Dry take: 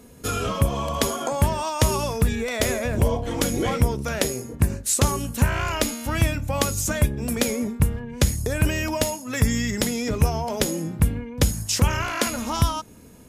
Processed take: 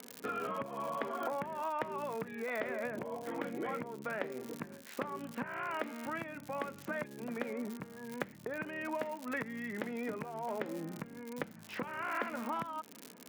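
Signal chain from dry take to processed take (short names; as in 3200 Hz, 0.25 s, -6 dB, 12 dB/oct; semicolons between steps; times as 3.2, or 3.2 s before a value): LPF 2000 Hz 24 dB/oct; crackle 130/s -34 dBFS; compressor, threshold -29 dBFS, peak gain reduction 15 dB; HPF 170 Hz 24 dB/oct; tilt +2 dB/oct; gain -3 dB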